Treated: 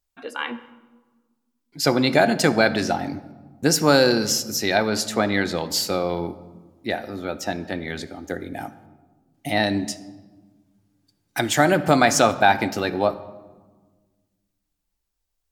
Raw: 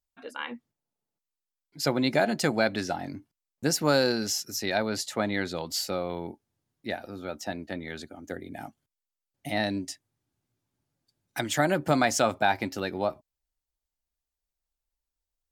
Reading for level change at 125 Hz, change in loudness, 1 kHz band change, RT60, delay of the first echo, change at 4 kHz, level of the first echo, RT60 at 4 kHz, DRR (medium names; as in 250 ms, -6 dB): +6.5 dB, +7.0 dB, +8.0 dB, 1.4 s, no echo, +7.0 dB, no echo, 0.85 s, 11.0 dB